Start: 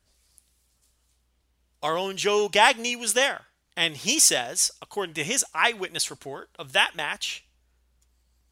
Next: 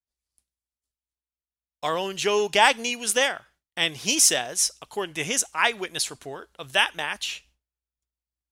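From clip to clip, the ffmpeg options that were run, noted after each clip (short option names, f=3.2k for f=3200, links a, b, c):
-af "agate=range=-33dB:threshold=-50dB:ratio=3:detection=peak"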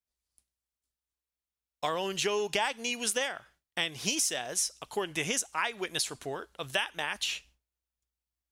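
-af "acompressor=threshold=-27dB:ratio=6"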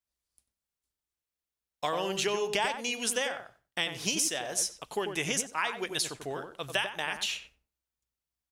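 -filter_complex "[0:a]asplit=2[a][b];[b]adelay=93,lowpass=f=1.1k:p=1,volume=-5dB,asplit=2[c][d];[d]adelay=93,lowpass=f=1.1k:p=1,volume=0.17,asplit=2[e][f];[f]adelay=93,lowpass=f=1.1k:p=1,volume=0.17[g];[a][c][e][g]amix=inputs=4:normalize=0"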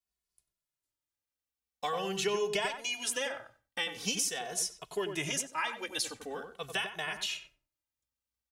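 -filter_complex "[0:a]asplit=2[a][b];[b]adelay=2.3,afreqshift=-0.44[c];[a][c]amix=inputs=2:normalize=1"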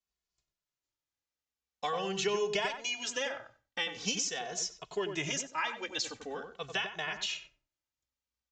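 -af "aresample=16000,aresample=44100"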